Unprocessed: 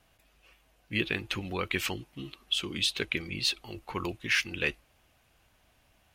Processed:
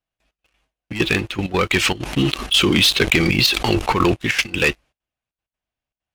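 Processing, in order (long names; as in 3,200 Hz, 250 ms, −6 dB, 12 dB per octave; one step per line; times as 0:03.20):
low-pass filter 8,300 Hz 12 dB per octave
noise gate with hold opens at −54 dBFS
parametric band 84 Hz −6 dB 0.25 octaves
leveller curve on the samples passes 3
gate pattern "xxxx.x.xxxxx." 195 BPM −12 dB
0:02.03–0:04.14: envelope flattener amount 70%
level +5 dB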